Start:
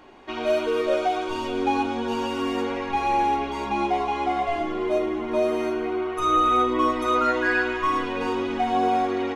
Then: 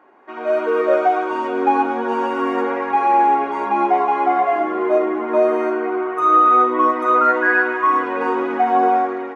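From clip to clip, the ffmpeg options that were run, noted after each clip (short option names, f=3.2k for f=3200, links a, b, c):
-af "highpass=310,highshelf=f=2.4k:t=q:w=1.5:g=-13.5,dynaudnorm=f=150:g=7:m=11dB,volume=-2.5dB"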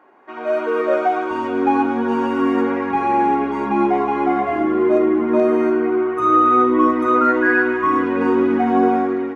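-af "asubboost=boost=9.5:cutoff=220"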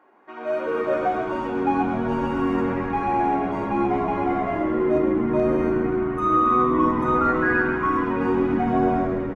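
-filter_complex "[0:a]asplit=9[a][b][c][d][e][f][g][h][i];[b]adelay=131,afreqshift=-84,volume=-9.5dB[j];[c]adelay=262,afreqshift=-168,volume=-13.5dB[k];[d]adelay=393,afreqshift=-252,volume=-17.5dB[l];[e]adelay=524,afreqshift=-336,volume=-21.5dB[m];[f]adelay=655,afreqshift=-420,volume=-25.6dB[n];[g]adelay=786,afreqshift=-504,volume=-29.6dB[o];[h]adelay=917,afreqshift=-588,volume=-33.6dB[p];[i]adelay=1048,afreqshift=-672,volume=-37.6dB[q];[a][j][k][l][m][n][o][p][q]amix=inputs=9:normalize=0,volume=-5.5dB"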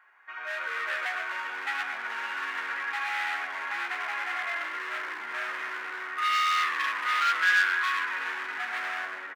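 -af "asoftclip=type=hard:threshold=-23.5dB,highpass=f=1.7k:t=q:w=2.4"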